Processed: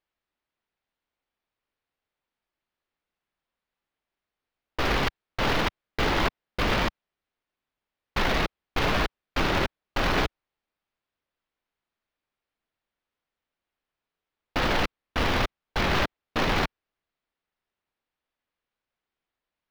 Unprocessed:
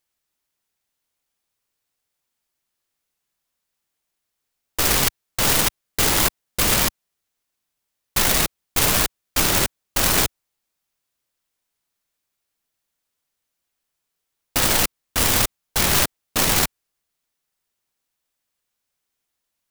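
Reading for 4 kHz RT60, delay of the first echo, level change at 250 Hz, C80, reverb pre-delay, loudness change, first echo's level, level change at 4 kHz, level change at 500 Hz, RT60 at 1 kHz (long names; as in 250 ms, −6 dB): no reverb audible, no echo audible, −1.5 dB, no reverb audible, no reverb audible, −8.0 dB, no echo audible, −8.0 dB, −1.0 dB, no reverb audible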